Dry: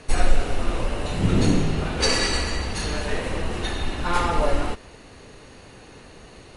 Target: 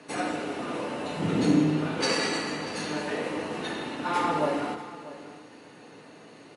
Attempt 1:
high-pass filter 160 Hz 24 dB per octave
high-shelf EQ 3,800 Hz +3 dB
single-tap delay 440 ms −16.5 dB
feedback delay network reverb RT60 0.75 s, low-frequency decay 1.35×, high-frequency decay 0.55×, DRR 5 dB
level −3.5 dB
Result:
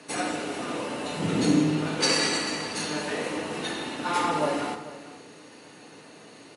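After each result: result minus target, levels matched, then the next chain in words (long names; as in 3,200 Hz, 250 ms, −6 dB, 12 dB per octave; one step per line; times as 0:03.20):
echo 199 ms early; 8,000 Hz band +5.5 dB
high-pass filter 160 Hz 24 dB per octave
high-shelf EQ 3,800 Hz +3 dB
single-tap delay 639 ms −16.5 dB
feedback delay network reverb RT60 0.75 s, low-frequency decay 1.35×, high-frequency decay 0.55×, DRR 5 dB
level −3.5 dB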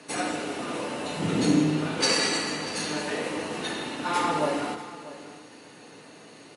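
8,000 Hz band +6.0 dB
high-pass filter 160 Hz 24 dB per octave
high-shelf EQ 3,800 Hz −6 dB
single-tap delay 639 ms −16.5 dB
feedback delay network reverb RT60 0.75 s, low-frequency decay 1.35×, high-frequency decay 0.55×, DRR 5 dB
level −3.5 dB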